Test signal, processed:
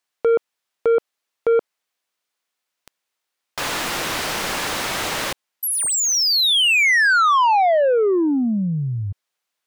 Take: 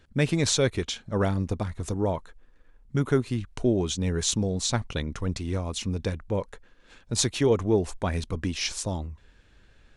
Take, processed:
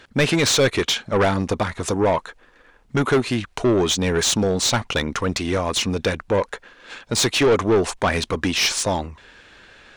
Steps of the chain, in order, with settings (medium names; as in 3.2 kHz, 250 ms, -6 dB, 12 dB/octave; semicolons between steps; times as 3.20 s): overdrive pedal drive 24 dB, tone 4.3 kHz, clips at -8 dBFS